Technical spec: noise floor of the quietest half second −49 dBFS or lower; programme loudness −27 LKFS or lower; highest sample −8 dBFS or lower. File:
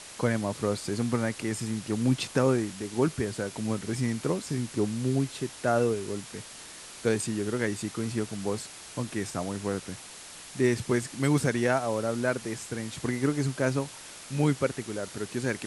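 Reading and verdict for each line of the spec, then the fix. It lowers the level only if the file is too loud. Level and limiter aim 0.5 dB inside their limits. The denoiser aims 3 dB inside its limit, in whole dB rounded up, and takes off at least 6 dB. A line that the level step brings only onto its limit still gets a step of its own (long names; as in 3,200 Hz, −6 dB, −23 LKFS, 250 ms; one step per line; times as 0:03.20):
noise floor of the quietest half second −45 dBFS: out of spec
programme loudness −29.5 LKFS: in spec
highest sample −11.0 dBFS: in spec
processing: broadband denoise 7 dB, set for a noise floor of −45 dBFS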